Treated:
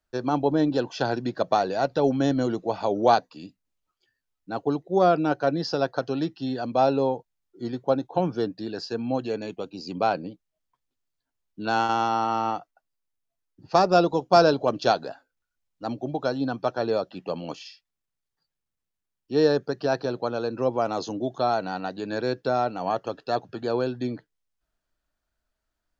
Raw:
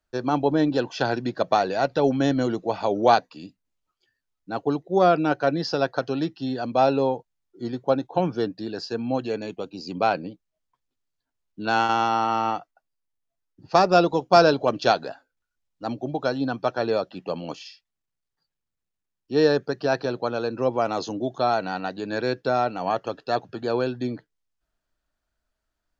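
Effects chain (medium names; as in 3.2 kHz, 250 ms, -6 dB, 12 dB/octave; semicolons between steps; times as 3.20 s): dynamic bell 2.2 kHz, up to -5 dB, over -39 dBFS, Q 1.2; trim -1 dB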